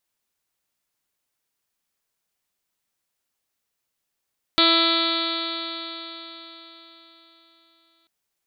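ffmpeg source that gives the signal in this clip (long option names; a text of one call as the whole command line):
ffmpeg -f lavfi -i "aevalsrc='0.0794*pow(10,-3*t/4.21)*sin(2*PI*330.1*t)+0.0501*pow(10,-3*t/4.21)*sin(2*PI*660.83*t)+0.0335*pow(10,-3*t/4.21)*sin(2*PI*992.8*t)+0.0841*pow(10,-3*t/4.21)*sin(2*PI*1326.64*t)+0.0211*pow(10,-3*t/4.21)*sin(2*PI*1662.94*t)+0.0316*pow(10,-3*t/4.21)*sin(2*PI*2002.33*t)+0.0447*pow(10,-3*t/4.21)*sin(2*PI*2345.38*t)+0.02*pow(10,-3*t/4.21)*sin(2*PI*2692.7*t)+0.0422*pow(10,-3*t/4.21)*sin(2*PI*3044.84*t)+0.0891*pow(10,-3*t/4.21)*sin(2*PI*3402.36*t)+0.106*pow(10,-3*t/4.21)*sin(2*PI*3765.82*t)+0.0841*pow(10,-3*t/4.21)*sin(2*PI*4135.73*t)+0.0473*pow(10,-3*t/4.21)*sin(2*PI*4512.6*t)':duration=3.49:sample_rate=44100" out.wav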